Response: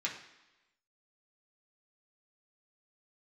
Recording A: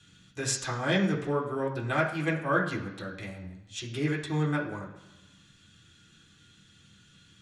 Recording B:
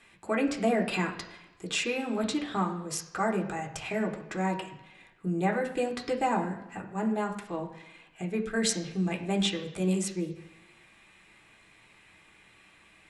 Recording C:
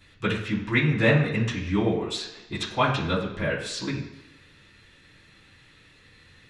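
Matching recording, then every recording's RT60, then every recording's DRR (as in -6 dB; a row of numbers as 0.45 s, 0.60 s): A; 1.0 s, 1.0 s, 1.0 s; -4.0 dB, 0.5 dB, -11.0 dB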